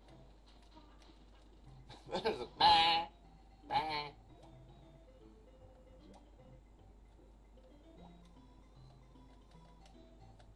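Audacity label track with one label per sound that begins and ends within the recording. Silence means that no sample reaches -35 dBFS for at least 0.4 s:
2.130000	3.030000	sound
3.710000	4.050000	sound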